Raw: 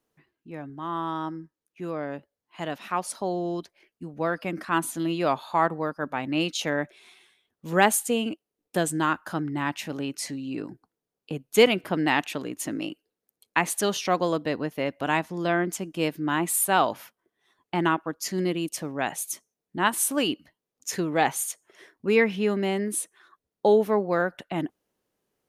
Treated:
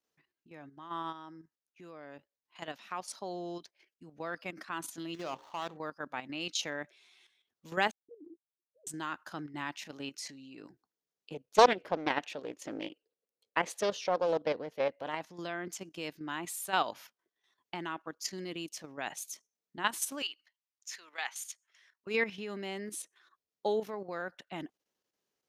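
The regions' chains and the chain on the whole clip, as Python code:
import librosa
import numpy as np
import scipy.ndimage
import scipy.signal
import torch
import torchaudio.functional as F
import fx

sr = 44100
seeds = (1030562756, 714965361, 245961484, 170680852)

y = fx.chain(x, sr, fx.median_filter(points=25),
    fx.hum_notches(base_hz=60, count=9), at=(5.14, 5.77))
y = fx.chain(y, sr, fx.sine_speech(),
    fx.cheby2_lowpass(hz=1200.0, order=4, stop_db=70),
    fx.peak_eq(hz=210.0, db=-6.5, octaves=0.33), at=(7.91, 8.87))
y = fx.chain(y, sr, fx.lowpass(hz=3900.0, slope=6),
    fx.peak_eq(hz=500.0, db=11.5, octaves=0.72),
    fx.doppler_dist(depth_ms=0.63), at=(11.34, 15.21))
y = fx.chain(y, sr, fx.highpass(hz=1300.0, slope=12),
    fx.high_shelf(hz=5600.0, db=-6.5), at=(20.22, 22.07))
y = fx.high_shelf_res(y, sr, hz=7600.0, db=-7.5, q=1.5)
y = fx.level_steps(y, sr, step_db=10)
y = fx.tilt_eq(y, sr, slope=2.0)
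y = F.gain(torch.from_numpy(y), -6.5).numpy()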